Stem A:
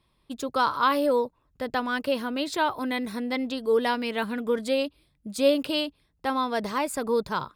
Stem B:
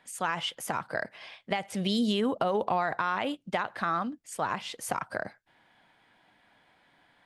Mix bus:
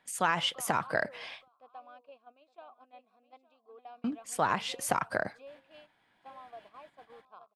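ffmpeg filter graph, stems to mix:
-filter_complex "[0:a]acompressor=threshold=-40dB:ratio=2,asplit=3[a][b][c];[a]bandpass=f=730:t=q:w=8,volume=0dB[d];[b]bandpass=f=1.09k:t=q:w=8,volume=-6dB[e];[c]bandpass=f=2.44k:t=q:w=8,volume=-9dB[f];[d][e][f]amix=inputs=3:normalize=0,volume=-5dB,asplit=2[g][h];[h]volume=-11dB[i];[1:a]volume=2.5dB,asplit=3[j][k][l];[j]atrim=end=1.48,asetpts=PTS-STARTPTS,afade=t=out:st=1.476:d=0.004:c=hsin[m];[k]atrim=start=1.48:end=4.04,asetpts=PTS-STARTPTS,volume=0[n];[l]atrim=start=4.04,asetpts=PTS-STARTPTS,afade=t=in:d=0.004:c=hsin[o];[m][n][o]concat=n=3:v=0:a=1[p];[i]aecho=0:1:868:1[q];[g][p][q]amix=inputs=3:normalize=0,agate=range=-9dB:threshold=-53dB:ratio=16:detection=peak"

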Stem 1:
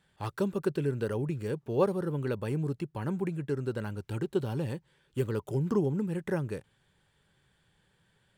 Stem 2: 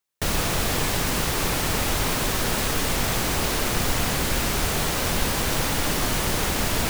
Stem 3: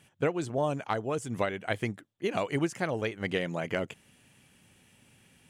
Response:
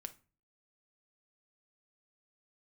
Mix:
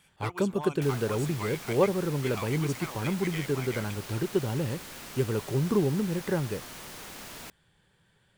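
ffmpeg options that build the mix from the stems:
-filter_complex "[0:a]volume=2.5dB[a];[1:a]acrossover=split=120|900[b][c][d];[b]acompressor=threshold=-47dB:ratio=4[e];[c]acompressor=threshold=-36dB:ratio=4[f];[d]acompressor=threshold=-29dB:ratio=4[g];[e][f][g]amix=inputs=3:normalize=0,adelay=600,volume=-13dB[h];[2:a]highpass=f=1.2k:p=1,aecho=1:1:0.9:0.65,asoftclip=type=hard:threshold=-29.5dB,volume=-1.5dB[i];[a][h][i]amix=inputs=3:normalize=0"

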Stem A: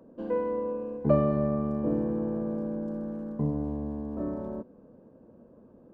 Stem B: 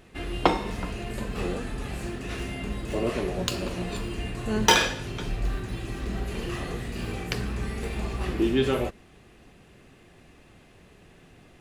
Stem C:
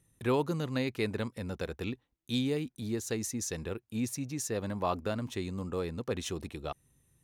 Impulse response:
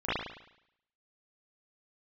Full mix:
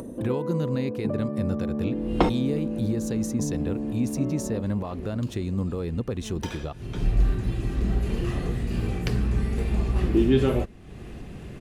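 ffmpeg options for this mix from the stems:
-filter_complex "[0:a]highpass=f=170:w=0.5412,highpass=f=170:w=1.3066,acompressor=threshold=-31dB:ratio=6,volume=-2dB[a];[1:a]adelay=1750,volume=-3.5dB[b];[2:a]alimiter=level_in=4dB:limit=-24dB:level=0:latency=1:release=208,volume=-4dB,volume=1.5dB,asplit=2[c][d];[d]apad=whole_len=588955[e];[b][e]sidechaincompress=threshold=-56dB:ratio=5:attack=6.7:release=209[f];[a][f][c]amix=inputs=3:normalize=0,lowshelf=f=390:g=11.5,acompressor=mode=upward:threshold=-28dB:ratio=2.5"

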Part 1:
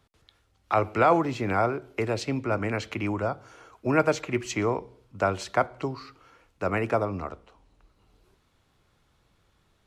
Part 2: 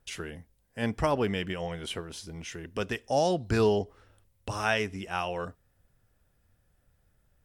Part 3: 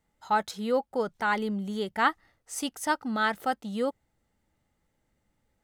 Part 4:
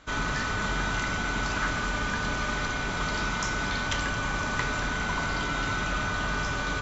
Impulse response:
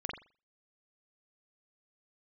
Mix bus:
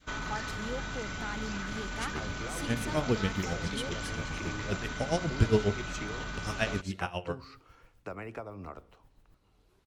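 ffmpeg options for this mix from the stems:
-filter_complex "[0:a]acompressor=threshold=-33dB:ratio=6,adelay=1450,volume=-4.5dB[a];[1:a]lowshelf=f=190:g=9,aeval=exprs='val(0)*pow(10,-22*(0.5-0.5*cos(2*PI*7.4*n/s))/20)':c=same,adelay=1900,volume=0.5dB,asplit=2[b][c];[c]volume=-16dB[d];[2:a]acompressor=threshold=-51dB:ratio=1.5,volume=-1dB[e];[3:a]alimiter=limit=-23.5dB:level=0:latency=1:release=24,volume=-4dB[f];[4:a]atrim=start_sample=2205[g];[d][g]afir=irnorm=-1:irlink=0[h];[a][b][e][f][h]amix=inputs=5:normalize=0,adynamicequalizer=threshold=0.00631:dfrequency=960:dqfactor=0.79:tfrequency=960:tqfactor=0.79:attack=5:release=100:ratio=0.375:range=2.5:mode=cutabove:tftype=bell"

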